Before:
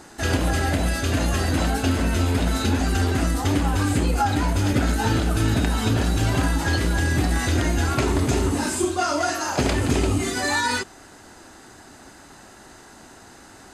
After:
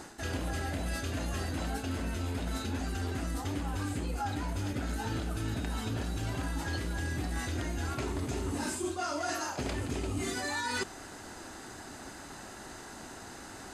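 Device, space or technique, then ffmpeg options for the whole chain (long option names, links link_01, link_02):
compression on the reversed sound: -af "areverse,acompressor=threshold=-31dB:ratio=10,areverse"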